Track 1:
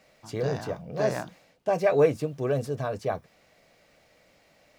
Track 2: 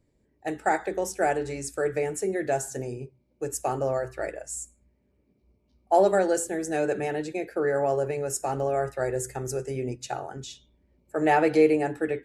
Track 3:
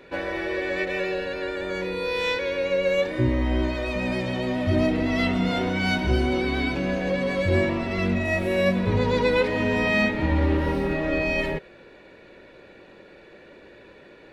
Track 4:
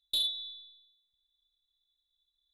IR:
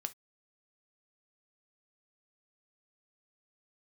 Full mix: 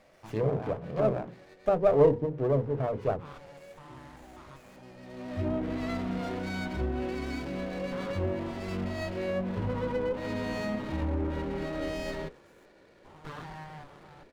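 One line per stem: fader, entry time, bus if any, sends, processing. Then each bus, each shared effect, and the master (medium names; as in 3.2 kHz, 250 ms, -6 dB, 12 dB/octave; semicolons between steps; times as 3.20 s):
+2.0 dB, 0.00 s, no send, treble shelf 4.1 kHz -5 dB; hum notches 50/100/150/200/250/300/350/400/450 Hz
-12.0 dB, 2.00 s, no send, spectrogram pixelated in time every 200 ms; bass shelf 460 Hz -7.5 dB; full-wave rectifier
-8.5 dB, 0.70 s, no send, auto duck -19 dB, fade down 1.25 s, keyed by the first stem
-16.5 dB, 0.00 s, no send, peak limiter -33.5 dBFS, peak gain reduction 8.5 dB; random flutter of the level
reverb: none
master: hum notches 60/120/180/240/300/360/420/480/540 Hz; low-pass that closes with the level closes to 740 Hz, closed at -24 dBFS; sliding maximum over 9 samples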